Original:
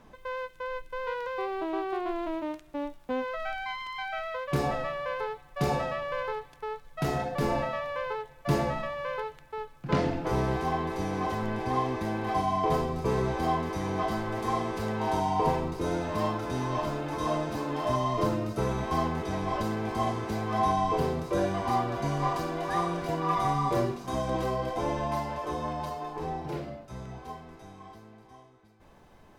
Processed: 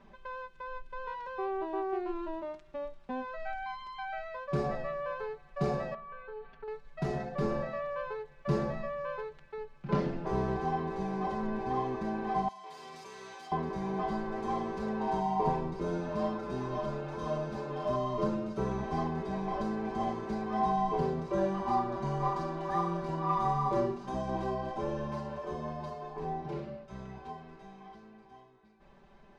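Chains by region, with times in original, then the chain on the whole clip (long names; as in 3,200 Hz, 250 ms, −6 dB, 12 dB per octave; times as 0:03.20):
0:05.94–0:06.68: low-pass filter 2,700 Hz + downward compressor, threshold −40 dBFS + comb filter 4.4 ms, depth 91%
0:12.48–0:13.52: first difference + envelope flattener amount 100%
whole clip: dynamic equaliser 2,600 Hz, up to −7 dB, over −48 dBFS, Q 0.76; low-pass filter 4,600 Hz 12 dB per octave; comb filter 5.1 ms, depth 92%; level −5.5 dB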